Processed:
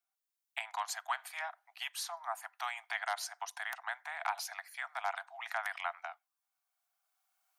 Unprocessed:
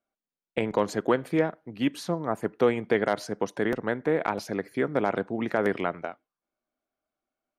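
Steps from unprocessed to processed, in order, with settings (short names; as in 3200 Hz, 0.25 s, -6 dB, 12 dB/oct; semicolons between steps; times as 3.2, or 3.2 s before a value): recorder AGC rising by 9 dB/s; steep high-pass 700 Hz 96 dB/oct; high shelf 5300 Hz +11 dB; gain -6 dB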